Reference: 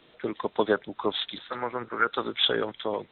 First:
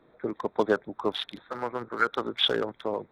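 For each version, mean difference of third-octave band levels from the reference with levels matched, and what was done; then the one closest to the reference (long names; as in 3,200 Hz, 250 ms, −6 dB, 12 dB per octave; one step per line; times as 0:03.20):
3.5 dB: adaptive Wiener filter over 15 samples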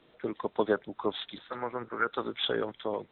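1.0 dB: high-shelf EQ 2,000 Hz −7.5 dB
level −2.5 dB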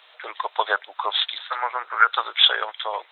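8.5 dB: inverse Chebyshev high-pass filter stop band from 160 Hz, stop band 70 dB
level +8.5 dB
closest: second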